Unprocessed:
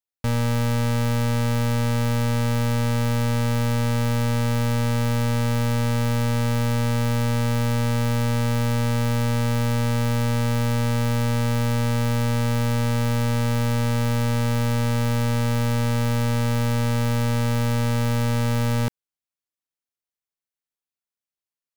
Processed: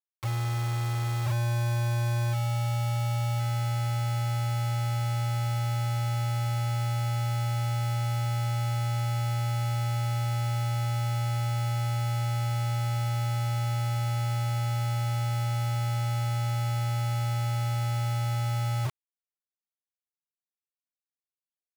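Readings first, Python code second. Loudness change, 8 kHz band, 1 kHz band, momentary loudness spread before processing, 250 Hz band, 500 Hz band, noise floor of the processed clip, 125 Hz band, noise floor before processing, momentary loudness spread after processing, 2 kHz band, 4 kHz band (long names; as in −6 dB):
−6.0 dB, −7.0 dB, −4.5 dB, 0 LU, below −15 dB, −13.5 dB, below −85 dBFS, −4.5 dB, below −85 dBFS, 1 LU, −9.0 dB, −6.5 dB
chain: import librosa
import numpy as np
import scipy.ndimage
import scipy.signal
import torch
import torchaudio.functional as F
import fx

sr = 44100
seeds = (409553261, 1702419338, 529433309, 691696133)

p1 = x + fx.echo_feedback(x, sr, ms=1049, feedback_pct=25, wet_db=-13, dry=0)
p2 = p1 + 10.0 ** (-34.0 / 20.0) * np.sin(2.0 * np.pi * 1100.0 * np.arange(len(p1)) / sr)
p3 = fx.spec_topn(p2, sr, count=1)
p4 = fx.quant_dither(p3, sr, seeds[0], bits=6, dither='none')
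y = F.gain(torch.from_numpy(p4), 2.0).numpy()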